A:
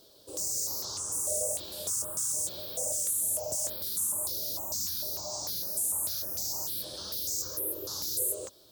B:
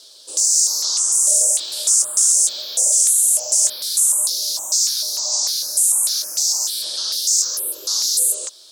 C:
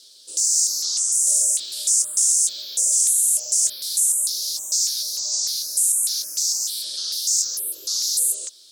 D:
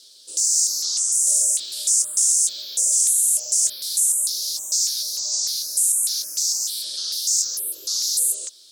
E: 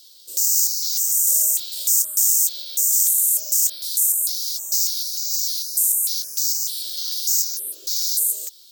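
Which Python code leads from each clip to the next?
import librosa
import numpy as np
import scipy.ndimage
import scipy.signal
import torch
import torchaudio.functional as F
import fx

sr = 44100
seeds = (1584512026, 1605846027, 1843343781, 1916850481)

y1 = fx.weighting(x, sr, curve='ITU-R 468')
y1 = y1 * 10.0 ** (6.0 / 20.0)
y2 = fx.peak_eq(y1, sr, hz=860.0, db=-15.0, octaves=1.5)
y2 = y2 * 10.0 ** (-3.0 / 20.0)
y3 = y2
y4 = (np.kron(scipy.signal.resample_poly(y3, 1, 2), np.eye(2)[0]) * 2)[:len(y3)]
y4 = y4 * 10.0 ** (-2.0 / 20.0)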